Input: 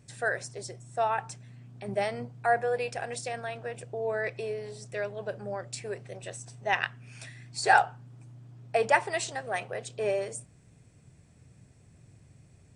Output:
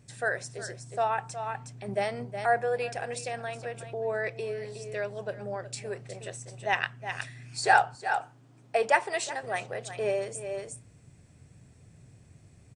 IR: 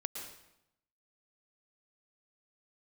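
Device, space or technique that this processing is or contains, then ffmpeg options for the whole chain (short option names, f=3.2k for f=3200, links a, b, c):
ducked delay: -filter_complex "[0:a]asplit=3[a][b][c];[b]adelay=365,volume=-3dB[d];[c]apad=whole_len=578402[e];[d][e]sidechaincompress=threshold=-47dB:ratio=8:attack=16:release=196[f];[a][f]amix=inputs=2:normalize=0,asettb=1/sr,asplit=3[g][h][i];[g]atrim=end=7.954[j];[h]atrim=start=7.95:end=9.43,asetpts=PTS-STARTPTS,afade=t=in:d=0.004:c=qsin,afade=t=out:st=1.476:d=0.004:c=qsin,highpass=240[k];[i]atrim=start=9.426[l];[j][k]acrossfade=d=0.004:c1=hsin:c2=qsin[m];[m][l]acrossfade=d=0.004:c1=qsin:c2=hsin"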